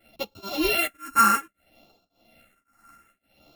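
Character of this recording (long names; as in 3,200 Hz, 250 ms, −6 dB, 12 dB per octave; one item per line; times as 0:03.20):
a buzz of ramps at a fixed pitch in blocks of 32 samples
phaser sweep stages 4, 0.62 Hz, lowest notch 580–1,800 Hz
tremolo triangle 1.8 Hz, depth 100%
a shimmering, thickened sound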